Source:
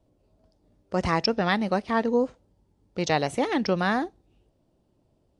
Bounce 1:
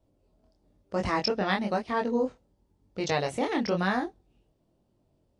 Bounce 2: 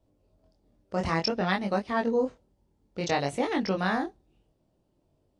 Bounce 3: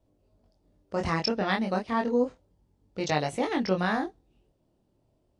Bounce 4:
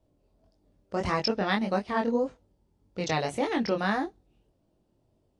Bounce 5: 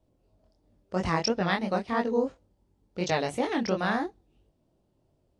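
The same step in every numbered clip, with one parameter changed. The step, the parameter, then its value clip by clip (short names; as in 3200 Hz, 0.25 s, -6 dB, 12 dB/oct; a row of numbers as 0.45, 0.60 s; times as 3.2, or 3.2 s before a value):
chorus, rate: 1, 0.56, 0.31, 1.7, 2.9 Hz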